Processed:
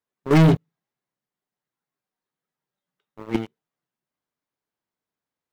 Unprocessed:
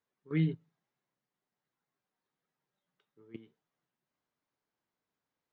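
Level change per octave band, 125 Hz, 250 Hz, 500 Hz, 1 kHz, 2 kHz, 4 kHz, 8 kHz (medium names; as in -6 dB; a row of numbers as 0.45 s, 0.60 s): +15.0 dB, +15.5 dB, +21.0 dB, +32.5 dB, +16.5 dB, +19.0 dB, no reading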